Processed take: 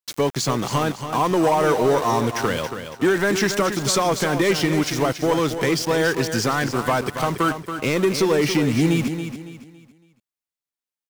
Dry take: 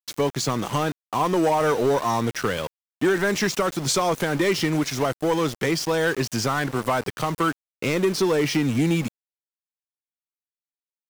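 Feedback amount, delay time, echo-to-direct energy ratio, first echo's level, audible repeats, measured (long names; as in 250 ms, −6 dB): 34%, 279 ms, −8.5 dB, −9.0 dB, 3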